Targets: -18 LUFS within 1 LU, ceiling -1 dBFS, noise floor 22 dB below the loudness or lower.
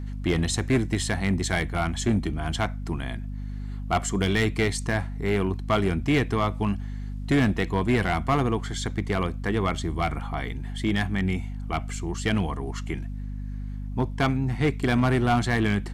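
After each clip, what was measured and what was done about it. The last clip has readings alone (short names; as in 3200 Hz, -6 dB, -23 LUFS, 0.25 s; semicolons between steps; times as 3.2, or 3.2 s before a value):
clipped 1.0%; flat tops at -16.0 dBFS; hum 50 Hz; harmonics up to 250 Hz; hum level -31 dBFS; loudness -26.5 LUFS; peak -16.0 dBFS; loudness target -18.0 LUFS
-> clip repair -16 dBFS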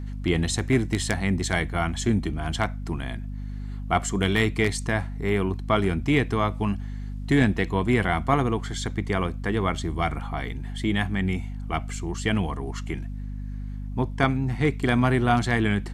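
clipped 0.0%; hum 50 Hz; harmonics up to 250 Hz; hum level -30 dBFS
-> de-hum 50 Hz, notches 5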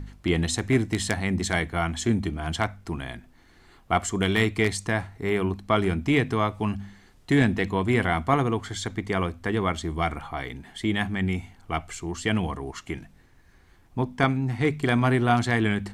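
hum none; loudness -26.0 LUFS; peak -7.0 dBFS; loudness target -18.0 LUFS
-> gain +8 dB; limiter -1 dBFS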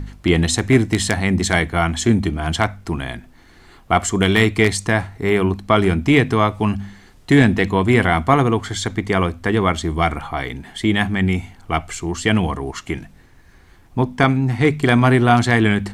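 loudness -18.0 LUFS; peak -1.0 dBFS; noise floor -48 dBFS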